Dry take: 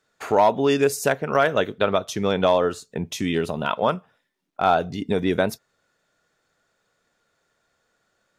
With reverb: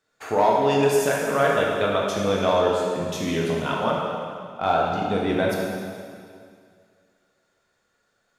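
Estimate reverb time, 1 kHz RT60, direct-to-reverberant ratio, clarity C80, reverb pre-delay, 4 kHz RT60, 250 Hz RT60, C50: 2.2 s, 2.2 s, -3.5 dB, 1.5 dB, 5 ms, 2.0 s, 2.2 s, -0.5 dB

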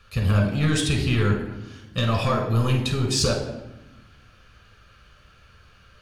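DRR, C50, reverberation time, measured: 2.0 dB, 5.5 dB, 1.0 s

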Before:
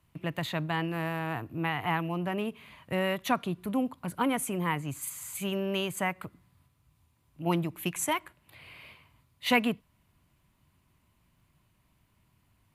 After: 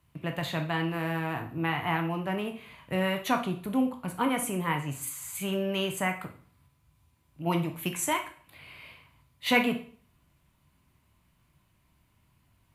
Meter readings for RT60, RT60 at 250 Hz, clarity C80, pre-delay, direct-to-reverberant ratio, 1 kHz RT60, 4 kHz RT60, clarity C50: 0.50 s, 0.50 s, 15.0 dB, 7 ms, 4.5 dB, 0.50 s, 0.40 s, 10.0 dB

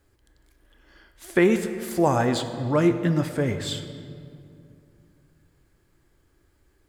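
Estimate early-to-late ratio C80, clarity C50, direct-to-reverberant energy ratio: 10.5 dB, 9.5 dB, 8.5 dB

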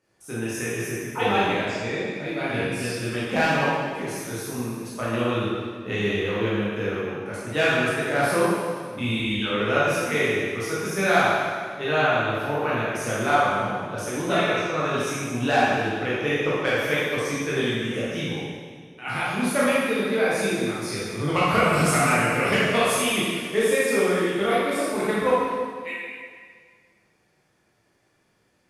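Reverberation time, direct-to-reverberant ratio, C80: 1.8 s, -9.0 dB, -0.5 dB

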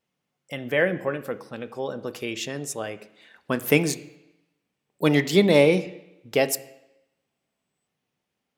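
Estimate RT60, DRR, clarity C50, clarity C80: 0.90 s, 10.5 dB, 16.0 dB, 18.0 dB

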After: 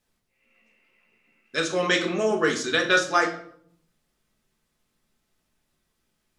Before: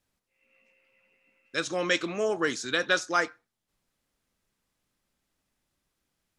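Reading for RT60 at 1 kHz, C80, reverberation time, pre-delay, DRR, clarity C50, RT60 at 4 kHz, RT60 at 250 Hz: 0.60 s, 13.5 dB, 0.65 s, 5 ms, 1.0 dB, 9.5 dB, 0.45 s, 1.0 s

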